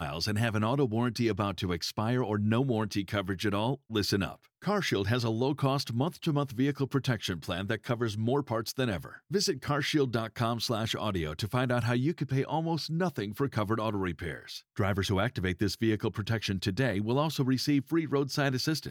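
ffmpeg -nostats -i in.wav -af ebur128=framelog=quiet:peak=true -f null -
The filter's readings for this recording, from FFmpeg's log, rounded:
Integrated loudness:
  I:         -30.4 LUFS
  Threshold: -40.5 LUFS
Loudness range:
  LRA:         1.8 LU
  Threshold: -50.7 LUFS
  LRA low:   -31.5 LUFS
  LRA high:  -29.8 LUFS
True peak:
  Peak:      -14.4 dBFS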